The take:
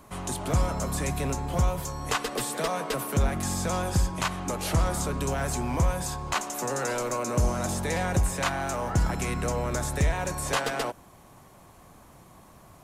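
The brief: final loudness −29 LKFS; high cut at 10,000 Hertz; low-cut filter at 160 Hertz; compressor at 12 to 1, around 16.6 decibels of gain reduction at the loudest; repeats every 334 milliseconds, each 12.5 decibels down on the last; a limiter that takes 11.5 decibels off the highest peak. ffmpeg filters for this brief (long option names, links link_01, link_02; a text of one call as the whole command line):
ffmpeg -i in.wav -af "highpass=160,lowpass=10000,acompressor=threshold=-40dB:ratio=12,alimiter=level_in=12dB:limit=-24dB:level=0:latency=1,volume=-12dB,aecho=1:1:334|668|1002:0.237|0.0569|0.0137,volume=16.5dB" out.wav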